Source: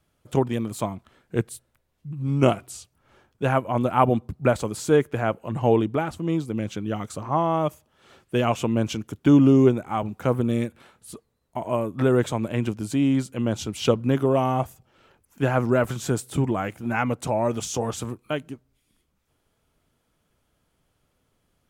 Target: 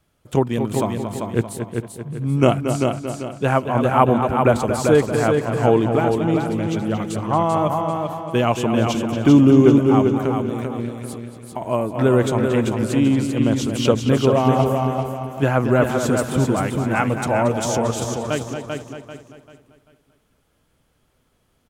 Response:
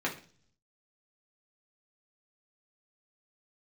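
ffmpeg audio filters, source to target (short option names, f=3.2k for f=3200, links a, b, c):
-filter_complex "[0:a]asettb=1/sr,asplit=3[a][b][c];[a]atrim=end=14.574[d];[b]atrim=start=14.57:end=15.44,asetpts=PTS-STARTPTS,afade=t=in:d=0.004:c=qsin,afade=t=out:st=0.866:d=0.004:c=qsin,asplit=2[e][f];[f]adelay=15,volume=-3.5dB[g];[e][g]amix=inputs=2:normalize=0,atrim=end_sample=38367[h];[c]atrim=start=15.436[i];[d][h]acrossfade=d=0.004:c1=hsin:c2=qsin[j];[j][i]acrossfade=d=0.004:c1=qsin:c2=hsin,asplit=2[k][l];[l]adelay=229,lowpass=f=4.1k:p=1,volume=-8dB,asplit=2[m][n];[n]adelay=229,lowpass=f=4.1k:p=1,volume=0.3,asplit=2[o][p];[p]adelay=229,lowpass=f=4.1k:p=1,volume=0.3,asplit=2[q][r];[r]adelay=229,lowpass=f=4.1k:p=1,volume=0.3[s];[m][o][q][s]amix=inputs=4:normalize=0[t];[k][t]amix=inputs=2:normalize=0,asettb=1/sr,asplit=3[u][v][w];[u]atrim=end=10.114[x];[v]atrim=start=10.11:end=11.61,asetpts=PTS-STARTPTS,afade=t=in:d=0.004:c=qsin,afade=t=out:st=1.496:d=0.004:c=qsin,acompressor=threshold=-27dB:ratio=6[y];[w]atrim=start=11.606[z];[x][y]acrossfade=d=0.004:c1=hsin:c2=qsin[aa];[aa][z]acrossfade=d=0.004:c1=qsin:c2=hsin,asplit=2[ab][ac];[ac]aecho=0:1:391|782|1173|1564:0.562|0.186|0.0612|0.0202[ad];[ab][ad]amix=inputs=2:normalize=0,volume=3.5dB"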